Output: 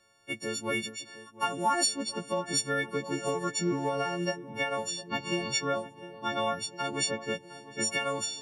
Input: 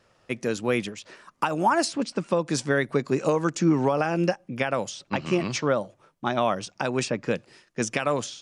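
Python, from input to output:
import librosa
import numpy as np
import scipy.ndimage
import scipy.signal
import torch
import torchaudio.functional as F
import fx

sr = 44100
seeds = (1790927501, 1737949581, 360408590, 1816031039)

y = fx.freq_snap(x, sr, grid_st=4)
y = fx.echo_filtered(y, sr, ms=709, feedback_pct=68, hz=1700.0, wet_db=-15.5)
y = y * 10.0 ** (-8.5 / 20.0)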